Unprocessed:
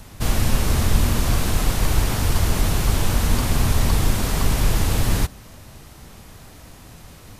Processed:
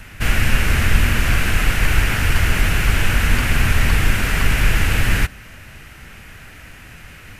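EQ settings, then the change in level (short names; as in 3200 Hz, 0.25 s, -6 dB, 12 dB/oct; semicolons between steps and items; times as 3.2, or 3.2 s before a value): low shelf 110 Hz +4.5 dB; band shelf 2000 Hz +13 dB 1.3 oct; -1.0 dB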